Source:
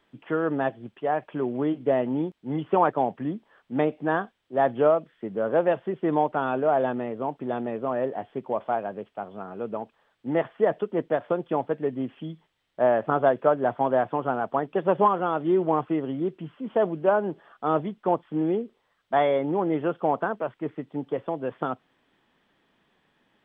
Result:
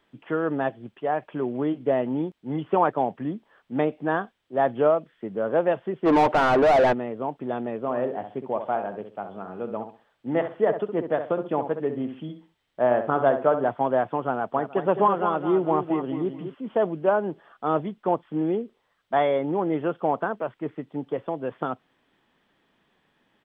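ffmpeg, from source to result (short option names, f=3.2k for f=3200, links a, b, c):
-filter_complex "[0:a]asplit=3[a][b][c];[a]afade=t=out:st=6.05:d=0.02[d];[b]asplit=2[e][f];[f]highpass=f=720:p=1,volume=29dB,asoftclip=type=tanh:threshold=-10dB[g];[e][g]amix=inputs=2:normalize=0,lowpass=f=1.1k:p=1,volume=-6dB,afade=t=in:st=6.05:d=0.02,afade=t=out:st=6.92:d=0.02[h];[c]afade=t=in:st=6.92:d=0.02[i];[d][h][i]amix=inputs=3:normalize=0,asettb=1/sr,asplit=3[j][k][l];[j]atrim=end=7.804[m];[k]atrim=start=7.8:end=13.69,asetpts=PTS-STARTPTS,afade=t=in:d=0.004:c=qsin,afade=t=out:st=5.886:d=0.004:c=qsin,asplit=2[n][o];[o]adelay=65,lowpass=f=2k:p=1,volume=-8dB,asplit=2[p][q];[q]adelay=65,lowpass=f=2k:p=1,volume=0.28,asplit=2[r][s];[s]adelay=65,lowpass=f=2k:p=1,volume=0.28[t];[n][p][r][t]amix=inputs=4:normalize=0,atrim=end_sample=259749[u];[l]atrim=start=13.686[v];[m][u]acrossfade=d=0.004:c1=hsin:c2=qsin[w];[w][v]acrossfade=d=0.004:c1=qsin:c2=hsin,asplit=3[x][y][z];[x]afade=t=out:st=14.55:d=0.02[aa];[y]aecho=1:1:212|424|636:0.376|0.105|0.0295,afade=t=in:st=14.55:d=0.02,afade=t=out:st=16.53:d=0.02[ab];[z]afade=t=in:st=16.53:d=0.02[ac];[aa][ab][ac]amix=inputs=3:normalize=0"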